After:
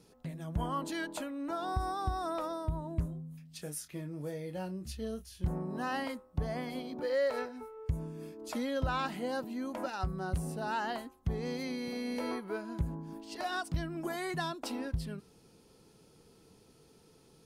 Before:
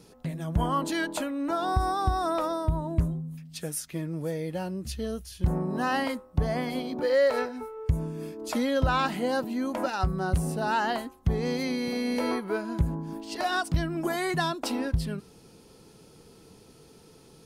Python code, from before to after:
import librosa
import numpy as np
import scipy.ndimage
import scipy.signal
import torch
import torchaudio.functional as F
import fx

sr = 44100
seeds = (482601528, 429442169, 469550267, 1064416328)

y = fx.doubler(x, sr, ms=27.0, db=-9.0, at=(3.03, 5.49))
y = y * librosa.db_to_amplitude(-8.0)